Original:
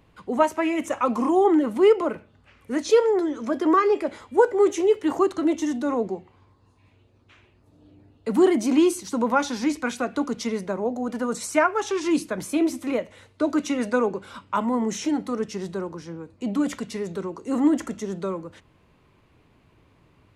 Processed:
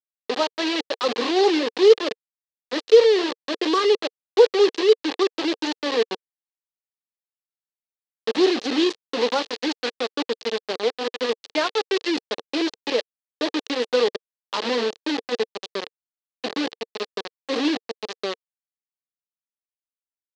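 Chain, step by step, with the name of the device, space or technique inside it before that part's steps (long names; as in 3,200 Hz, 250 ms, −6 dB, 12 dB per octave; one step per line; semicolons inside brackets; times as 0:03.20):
hand-held game console (bit reduction 4 bits; loudspeaker in its box 440–4,800 Hz, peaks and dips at 460 Hz +6 dB, 660 Hz −7 dB, 970 Hz −7 dB, 1,400 Hz −10 dB, 2,200 Hz −6 dB, 4,200 Hz +4 dB)
level +3 dB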